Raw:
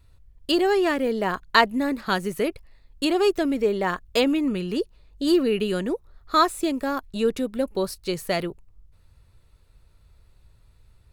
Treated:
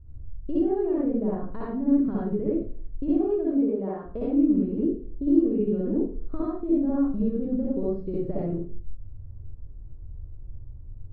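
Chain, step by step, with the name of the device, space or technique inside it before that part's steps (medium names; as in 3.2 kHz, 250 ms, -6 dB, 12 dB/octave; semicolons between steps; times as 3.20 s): bass shelf 97 Hz +9 dB; 3.37–4.05 s: high-pass 380 Hz 6 dB/octave; television next door (compression 4:1, threshold -30 dBFS, peak gain reduction 15.5 dB; low-pass 380 Hz 12 dB/octave; reverberation RT60 0.45 s, pre-delay 55 ms, DRR -7 dB); trim +2 dB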